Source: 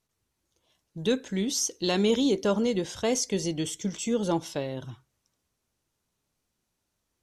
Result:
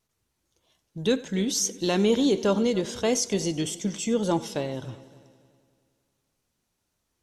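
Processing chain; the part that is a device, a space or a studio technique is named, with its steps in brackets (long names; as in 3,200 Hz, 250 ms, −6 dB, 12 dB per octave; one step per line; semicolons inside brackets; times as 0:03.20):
multi-head tape echo (echo machine with several playback heads 94 ms, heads first and third, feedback 52%, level −20 dB; tape wow and flutter 22 cents)
0:01.70–0:02.24: parametric band 4,700 Hz −4.5 dB 1.4 octaves
level +2 dB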